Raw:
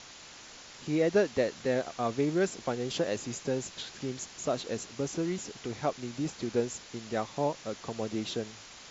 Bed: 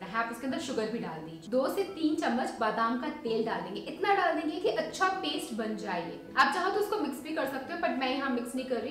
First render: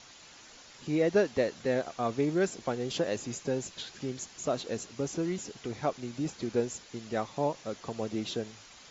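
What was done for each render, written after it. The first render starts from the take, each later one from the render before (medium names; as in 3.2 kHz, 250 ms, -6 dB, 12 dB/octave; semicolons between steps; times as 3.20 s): noise reduction 6 dB, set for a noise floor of -50 dBFS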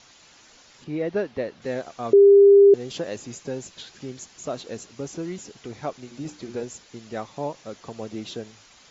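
0.84–1.62 s: distance through air 170 m; 2.13–2.74 s: bleep 400 Hz -8.5 dBFS; 6.03–6.63 s: hum notches 60/120/180/240/300/360/420/480 Hz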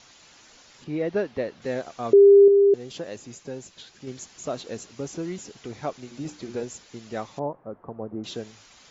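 2.48–4.07 s: gain -4.5 dB; 7.39–8.24 s: low-pass 1.2 kHz 24 dB/octave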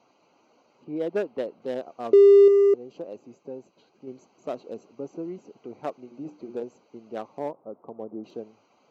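local Wiener filter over 25 samples; high-pass 260 Hz 12 dB/octave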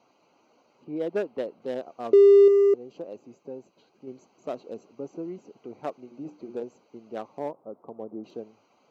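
trim -1 dB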